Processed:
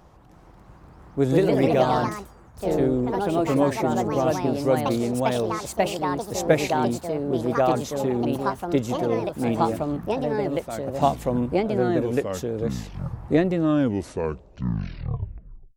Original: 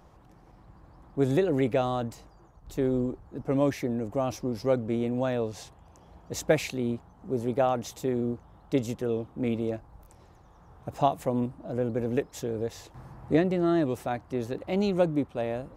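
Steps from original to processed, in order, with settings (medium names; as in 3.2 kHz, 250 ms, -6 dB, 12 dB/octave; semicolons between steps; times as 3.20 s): tape stop on the ending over 2.30 s; ever faster or slower copies 331 ms, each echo +3 st, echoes 3; trim +3.5 dB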